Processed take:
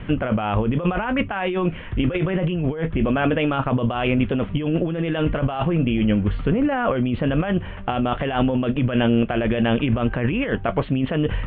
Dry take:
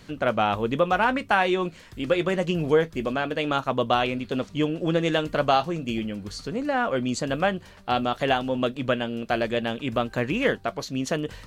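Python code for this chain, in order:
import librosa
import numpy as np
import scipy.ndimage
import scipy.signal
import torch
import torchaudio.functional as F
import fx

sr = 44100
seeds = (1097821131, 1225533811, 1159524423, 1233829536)

y = scipy.signal.sosfilt(scipy.signal.butter(12, 3200.0, 'lowpass', fs=sr, output='sos'), x)
y = fx.low_shelf(y, sr, hz=130.0, db=10.5)
y = fx.over_compress(y, sr, threshold_db=-28.0, ratio=-1.0)
y = y * librosa.db_to_amplitude(7.0)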